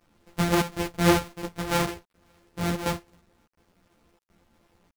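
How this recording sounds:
a buzz of ramps at a fixed pitch in blocks of 256 samples
chopped level 1.4 Hz, depth 65%, duty 85%
a quantiser's noise floor 10 bits, dither none
a shimmering, thickened sound

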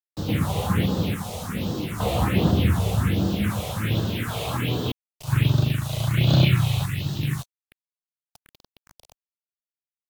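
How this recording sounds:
sample-and-hold tremolo, depth 70%
a quantiser's noise floor 6 bits, dither none
phaser sweep stages 4, 1.3 Hz, lowest notch 260–2,200 Hz
Ogg Vorbis

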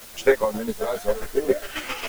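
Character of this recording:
chopped level 7.4 Hz, depth 60%, duty 25%
a quantiser's noise floor 8 bits, dither triangular
a shimmering, thickened sound

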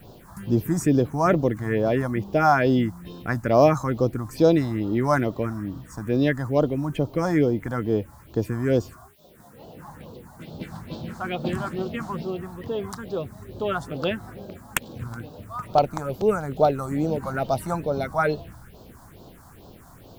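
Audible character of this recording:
a quantiser's noise floor 10 bits, dither triangular
phaser sweep stages 4, 2.3 Hz, lowest notch 420–2,000 Hz

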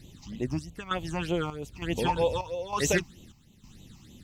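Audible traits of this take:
chopped level 1.1 Hz, depth 65%, duty 65%
a quantiser's noise floor 12 bits, dither none
phaser sweep stages 8, 3.2 Hz, lowest notch 460–1,600 Hz
AAC

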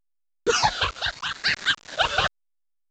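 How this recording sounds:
phaser sweep stages 8, 0.83 Hz, lowest notch 240–1,000 Hz
a quantiser's noise floor 6 bits, dither none
sample-and-hold tremolo
A-law companding

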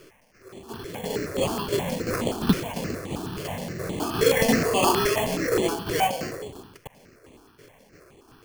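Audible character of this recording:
a quantiser's noise floor 10 bits, dither triangular
tremolo saw down 2.9 Hz, depth 55%
aliases and images of a low sample rate 3,800 Hz, jitter 0%
notches that jump at a steady rate 9.5 Hz 220–5,200 Hz

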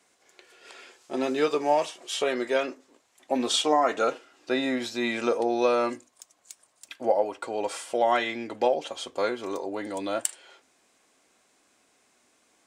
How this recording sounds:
background noise floor −67 dBFS
spectral slope −2.5 dB per octave

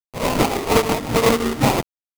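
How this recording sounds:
aliases and images of a low sample rate 1,600 Hz, jitter 20%
tremolo triangle 5.6 Hz, depth 65%
a quantiser's noise floor 6 bits, dither none

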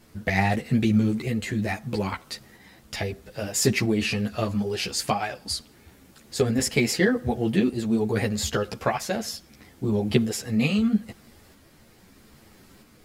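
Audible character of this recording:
tremolo saw up 0.78 Hz, depth 35%
a shimmering, thickened sound

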